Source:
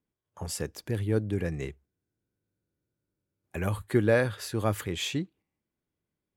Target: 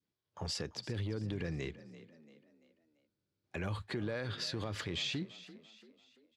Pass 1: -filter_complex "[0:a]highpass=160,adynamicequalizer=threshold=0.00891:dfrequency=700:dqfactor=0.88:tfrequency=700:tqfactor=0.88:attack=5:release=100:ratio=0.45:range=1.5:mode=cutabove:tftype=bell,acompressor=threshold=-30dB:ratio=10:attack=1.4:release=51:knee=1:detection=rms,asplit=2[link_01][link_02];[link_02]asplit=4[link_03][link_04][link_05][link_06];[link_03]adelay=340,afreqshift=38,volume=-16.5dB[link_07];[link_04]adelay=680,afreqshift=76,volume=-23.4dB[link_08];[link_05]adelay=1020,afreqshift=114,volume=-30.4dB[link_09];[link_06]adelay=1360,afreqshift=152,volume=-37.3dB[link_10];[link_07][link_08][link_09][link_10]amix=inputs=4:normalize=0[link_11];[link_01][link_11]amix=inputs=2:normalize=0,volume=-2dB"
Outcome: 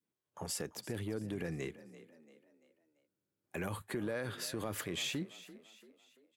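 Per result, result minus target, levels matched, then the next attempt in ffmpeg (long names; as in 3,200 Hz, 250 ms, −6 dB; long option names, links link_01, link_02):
125 Hz band −3.5 dB; 4,000 Hz band −2.5 dB
-filter_complex "[0:a]highpass=74,adynamicequalizer=threshold=0.00891:dfrequency=700:dqfactor=0.88:tfrequency=700:tqfactor=0.88:attack=5:release=100:ratio=0.45:range=1.5:mode=cutabove:tftype=bell,acompressor=threshold=-30dB:ratio=10:attack=1.4:release=51:knee=1:detection=rms,asplit=2[link_01][link_02];[link_02]asplit=4[link_03][link_04][link_05][link_06];[link_03]adelay=340,afreqshift=38,volume=-16.5dB[link_07];[link_04]adelay=680,afreqshift=76,volume=-23.4dB[link_08];[link_05]adelay=1020,afreqshift=114,volume=-30.4dB[link_09];[link_06]adelay=1360,afreqshift=152,volume=-37.3dB[link_10];[link_07][link_08][link_09][link_10]amix=inputs=4:normalize=0[link_11];[link_01][link_11]amix=inputs=2:normalize=0,volume=-2dB"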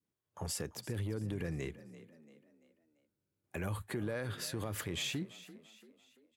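4,000 Hz band −3.0 dB
-filter_complex "[0:a]highpass=74,adynamicequalizer=threshold=0.00891:dfrequency=700:dqfactor=0.88:tfrequency=700:tqfactor=0.88:attack=5:release=100:ratio=0.45:range=1.5:mode=cutabove:tftype=bell,lowpass=frequency=4600:width_type=q:width=2.2,acompressor=threshold=-30dB:ratio=10:attack=1.4:release=51:knee=1:detection=rms,asplit=2[link_01][link_02];[link_02]asplit=4[link_03][link_04][link_05][link_06];[link_03]adelay=340,afreqshift=38,volume=-16.5dB[link_07];[link_04]adelay=680,afreqshift=76,volume=-23.4dB[link_08];[link_05]adelay=1020,afreqshift=114,volume=-30.4dB[link_09];[link_06]adelay=1360,afreqshift=152,volume=-37.3dB[link_10];[link_07][link_08][link_09][link_10]amix=inputs=4:normalize=0[link_11];[link_01][link_11]amix=inputs=2:normalize=0,volume=-2dB"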